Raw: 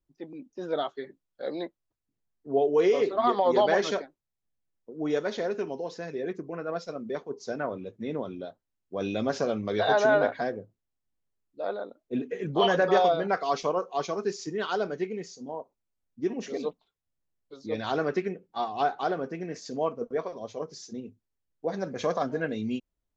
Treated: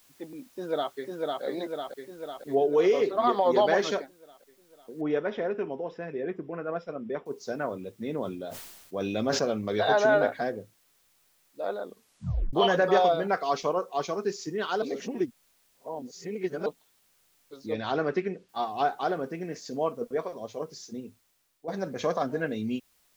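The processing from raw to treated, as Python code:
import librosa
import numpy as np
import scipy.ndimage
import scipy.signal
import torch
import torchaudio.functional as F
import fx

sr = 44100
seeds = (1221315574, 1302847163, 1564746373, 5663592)

y = fx.echo_throw(x, sr, start_s=0.52, length_s=0.91, ms=500, feedback_pct=65, wet_db=-2.0)
y = fx.noise_floor_step(y, sr, seeds[0], at_s=2.55, before_db=-61, after_db=-67, tilt_db=0.0)
y = fx.savgol(y, sr, points=25, at=(5.01, 7.26))
y = fx.sustainer(y, sr, db_per_s=48.0, at=(8.12, 9.45))
y = fx.notch(y, sr, hz=1000.0, q=10.0, at=(10.04, 10.45))
y = fx.lowpass(y, sr, hz=5300.0, slope=12, at=(17.73, 18.49))
y = fx.edit(y, sr, fx.tape_stop(start_s=11.82, length_s=0.71),
    fx.reverse_span(start_s=14.82, length_s=1.84),
    fx.fade_out_to(start_s=20.94, length_s=0.74, floor_db=-11.0), tone=tone)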